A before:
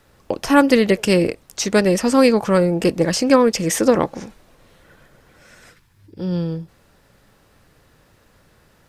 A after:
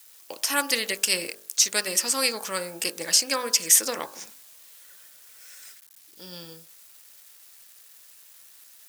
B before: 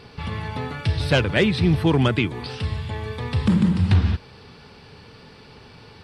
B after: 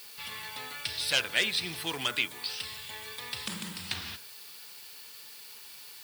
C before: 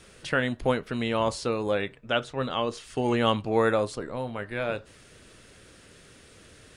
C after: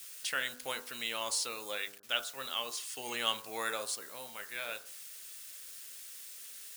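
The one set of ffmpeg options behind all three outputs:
-af "acrusher=bits=8:mix=0:aa=0.000001,aderivative,bandreject=frequency=50:width_type=h:width=4,bandreject=frequency=100:width_type=h:width=4,bandreject=frequency=150:width_type=h:width=4,bandreject=frequency=200:width_type=h:width=4,bandreject=frequency=250:width_type=h:width=4,bandreject=frequency=300:width_type=h:width=4,bandreject=frequency=350:width_type=h:width=4,bandreject=frequency=400:width_type=h:width=4,bandreject=frequency=450:width_type=h:width=4,bandreject=frequency=500:width_type=h:width=4,bandreject=frequency=550:width_type=h:width=4,bandreject=frequency=600:width_type=h:width=4,bandreject=frequency=650:width_type=h:width=4,bandreject=frequency=700:width_type=h:width=4,bandreject=frequency=750:width_type=h:width=4,bandreject=frequency=800:width_type=h:width=4,bandreject=frequency=850:width_type=h:width=4,bandreject=frequency=900:width_type=h:width=4,bandreject=frequency=950:width_type=h:width=4,bandreject=frequency=1000:width_type=h:width=4,bandreject=frequency=1050:width_type=h:width=4,bandreject=frequency=1100:width_type=h:width=4,bandreject=frequency=1150:width_type=h:width=4,bandreject=frequency=1200:width_type=h:width=4,bandreject=frequency=1250:width_type=h:width=4,bandreject=frequency=1300:width_type=h:width=4,bandreject=frequency=1350:width_type=h:width=4,bandreject=frequency=1400:width_type=h:width=4,bandreject=frequency=1450:width_type=h:width=4,bandreject=frequency=1500:width_type=h:width=4,bandreject=frequency=1550:width_type=h:width=4,bandreject=frequency=1600:width_type=h:width=4,bandreject=frequency=1650:width_type=h:width=4,bandreject=frequency=1700:width_type=h:width=4,volume=6.5dB"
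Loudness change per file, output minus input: −5.5, −10.0, −9.0 LU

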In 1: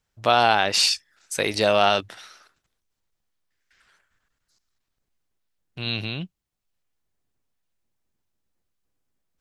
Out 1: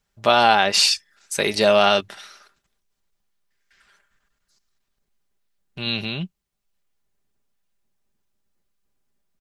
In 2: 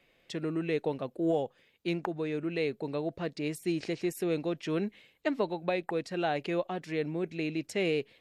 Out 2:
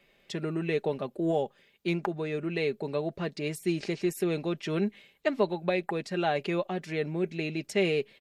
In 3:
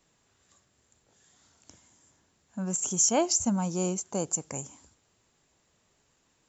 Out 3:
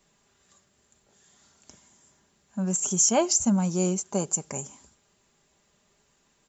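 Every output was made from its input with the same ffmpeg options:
-af "aecho=1:1:5:0.44,volume=2dB"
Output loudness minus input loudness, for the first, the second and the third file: +3.0, +2.0, +3.0 LU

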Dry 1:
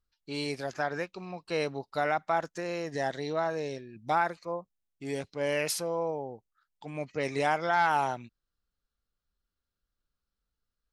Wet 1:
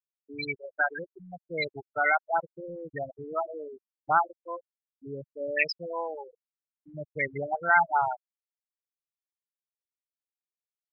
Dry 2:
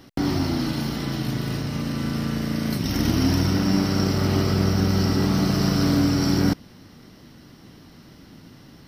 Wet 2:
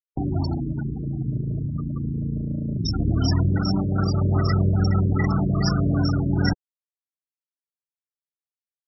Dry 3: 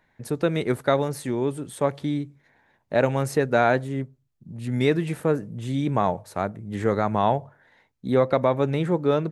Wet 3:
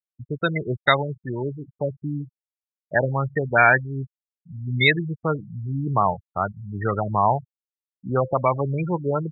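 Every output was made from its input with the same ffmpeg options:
-af "afftfilt=real='re*gte(hypot(re,im),0.0794)':imag='im*gte(hypot(re,im),0.0794)':win_size=1024:overlap=0.75,equalizer=frequency=250:width_type=o:width=1:gain=-9,equalizer=frequency=500:width_type=o:width=1:gain=-7,equalizer=frequency=2000:width_type=o:width=1:gain=10,equalizer=frequency=4000:width_type=o:width=1:gain=8,equalizer=frequency=8000:width_type=o:width=1:gain=3,afftfilt=real='re*lt(b*sr/1024,600*pow(6400/600,0.5+0.5*sin(2*PI*2.5*pts/sr)))':imag='im*lt(b*sr/1024,600*pow(6400/600,0.5+0.5*sin(2*PI*2.5*pts/sr)))':win_size=1024:overlap=0.75,volume=4.5dB"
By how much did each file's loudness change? +2.5, −1.0, +1.0 LU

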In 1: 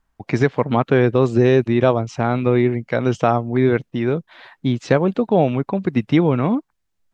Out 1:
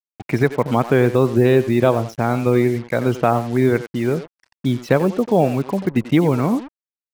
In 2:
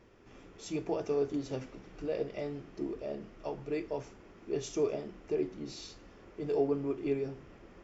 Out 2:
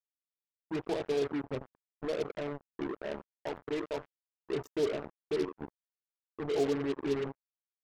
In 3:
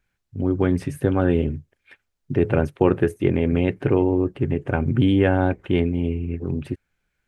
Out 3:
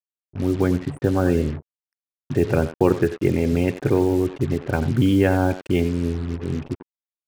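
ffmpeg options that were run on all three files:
-filter_complex "[0:a]afftfilt=real='re*gte(hypot(re,im),0.0224)':imag='im*gte(hypot(re,im),0.0224)':win_size=1024:overlap=0.75,asplit=2[link_01][link_02];[link_02]adelay=90,highpass=300,lowpass=3400,asoftclip=type=hard:threshold=-10.5dB,volume=-12dB[link_03];[link_01][link_03]amix=inputs=2:normalize=0,acrusher=bits=5:mix=0:aa=0.5"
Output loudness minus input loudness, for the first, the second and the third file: 0.0, +0.5, 0.0 LU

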